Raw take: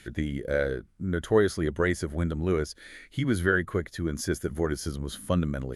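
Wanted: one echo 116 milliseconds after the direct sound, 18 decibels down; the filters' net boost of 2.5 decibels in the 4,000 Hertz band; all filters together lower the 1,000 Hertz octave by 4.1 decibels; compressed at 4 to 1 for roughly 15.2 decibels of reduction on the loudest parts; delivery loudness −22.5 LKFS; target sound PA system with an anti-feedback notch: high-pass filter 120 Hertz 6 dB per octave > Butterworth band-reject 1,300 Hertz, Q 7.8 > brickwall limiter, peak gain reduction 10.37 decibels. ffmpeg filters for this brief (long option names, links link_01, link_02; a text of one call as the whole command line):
ffmpeg -i in.wav -af "equalizer=frequency=1000:width_type=o:gain=-4,equalizer=frequency=4000:width_type=o:gain=3.5,acompressor=threshold=-36dB:ratio=4,highpass=frequency=120:poles=1,asuperstop=centerf=1300:order=8:qfactor=7.8,aecho=1:1:116:0.126,volume=23dB,alimiter=limit=-12dB:level=0:latency=1" out.wav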